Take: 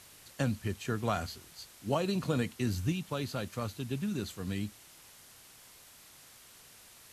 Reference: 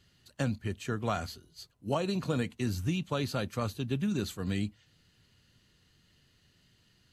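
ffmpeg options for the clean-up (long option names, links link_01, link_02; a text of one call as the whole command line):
ffmpeg -i in.wav -af "afwtdn=0.002,asetnsamples=nb_out_samples=441:pad=0,asendcmd='2.92 volume volume 3.5dB',volume=0dB" out.wav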